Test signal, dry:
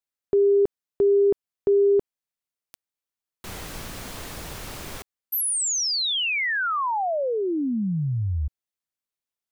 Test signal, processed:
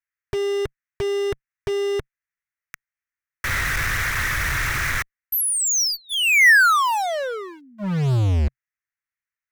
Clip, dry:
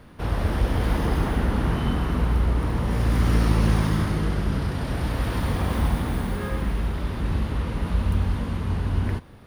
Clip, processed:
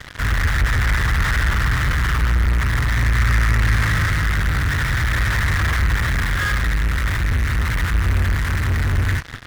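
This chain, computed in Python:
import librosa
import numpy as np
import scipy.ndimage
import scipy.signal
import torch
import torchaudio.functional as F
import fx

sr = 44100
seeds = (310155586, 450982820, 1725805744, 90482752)

p1 = fx.curve_eq(x, sr, hz=(130.0, 230.0, 730.0, 1300.0, 1900.0, 2700.0, 4000.0, 5800.0, 8500.0, 13000.0), db=(0, -24, -16, 4, 12, -1, -29, -3, -12, -8))
p2 = fx.fuzz(p1, sr, gain_db=49.0, gate_db=-44.0)
y = p1 + F.gain(torch.from_numpy(p2), -9.0).numpy()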